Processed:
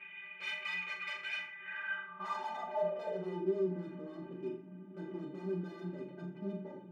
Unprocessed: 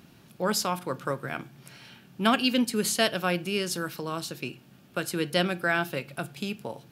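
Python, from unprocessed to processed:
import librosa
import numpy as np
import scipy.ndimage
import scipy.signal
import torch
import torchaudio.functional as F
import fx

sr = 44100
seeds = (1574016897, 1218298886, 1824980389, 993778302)

p1 = fx.cvsd(x, sr, bps=16000)
p2 = fx.fold_sine(p1, sr, drive_db=17, ceiling_db=-14.0)
p3 = p1 + F.gain(torch.from_numpy(p2), -5.0).numpy()
p4 = fx.low_shelf(p3, sr, hz=76.0, db=-10.0)
p5 = np.clip(p4, -10.0 ** (-25.5 / 20.0), 10.0 ** (-25.5 / 20.0))
p6 = fx.stiff_resonator(p5, sr, f0_hz=180.0, decay_s=0.43, stiffness=0.03)
p7 = fx.room_flutter(p6, sr, wall_m=7.0, rt60_s=0.36)
p8 = fx.filter_sweep_bandpass(p7, sr, from_hz=2300.0, to_hz=290.0, start_s=1.43, end_s=3.67, q=6.0)
y = F.gain(torch.from_numpy(p8), 15.5).numpy()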